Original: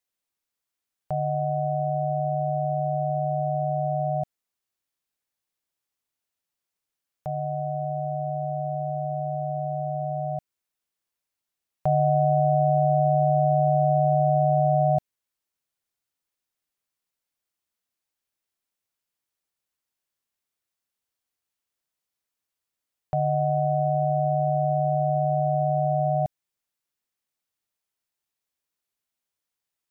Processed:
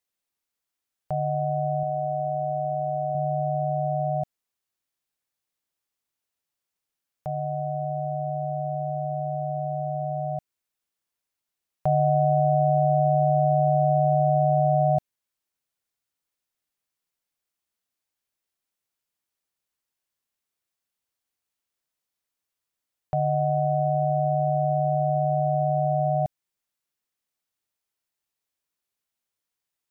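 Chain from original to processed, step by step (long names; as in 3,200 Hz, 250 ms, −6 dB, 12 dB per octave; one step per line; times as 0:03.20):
0:01.83–0:03.15: low-shelf EQ 130 Hz −11.5 dB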